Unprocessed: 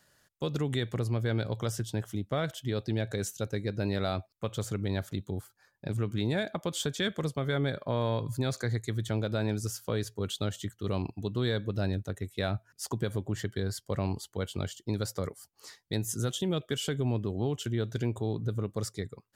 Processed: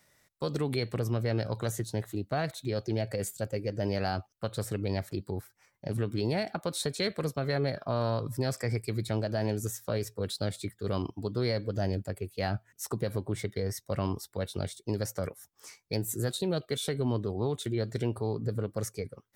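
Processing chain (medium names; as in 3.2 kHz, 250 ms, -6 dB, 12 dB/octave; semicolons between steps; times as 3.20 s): formant shift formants +3 st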